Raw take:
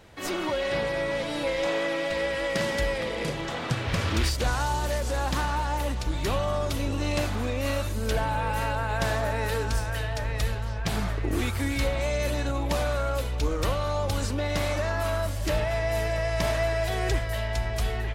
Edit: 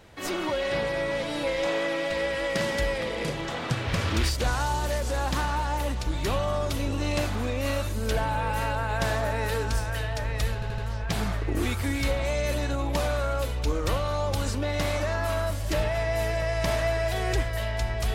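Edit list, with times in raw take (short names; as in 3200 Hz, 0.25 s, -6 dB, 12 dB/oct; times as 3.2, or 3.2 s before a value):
10.54 stutter 0.08 s, 4 plays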